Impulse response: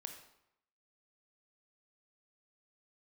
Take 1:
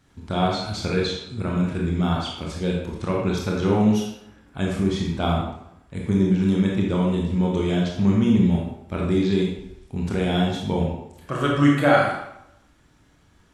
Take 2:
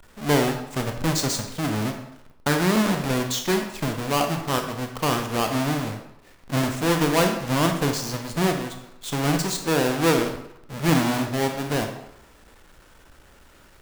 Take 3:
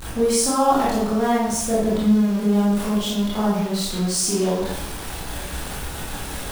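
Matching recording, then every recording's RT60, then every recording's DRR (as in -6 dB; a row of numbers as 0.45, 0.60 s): 2; 0.80, 0.80, 0.80 s; -2.5, 4.5, -8.5 dB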